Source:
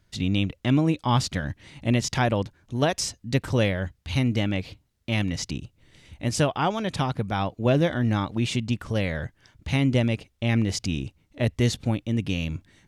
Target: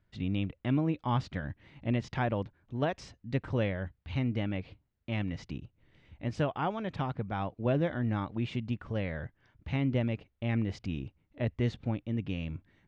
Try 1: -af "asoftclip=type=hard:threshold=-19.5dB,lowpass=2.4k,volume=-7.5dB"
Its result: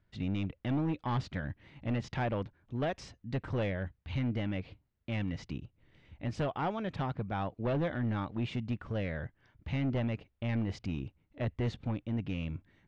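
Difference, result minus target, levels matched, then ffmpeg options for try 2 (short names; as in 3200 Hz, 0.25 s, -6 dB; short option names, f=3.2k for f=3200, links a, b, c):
hard clip: distortion +38 dB
-af "asoftclip=type=hard:threshold=-9.5dB,lowpass=2.4k,volume=-7.5dB"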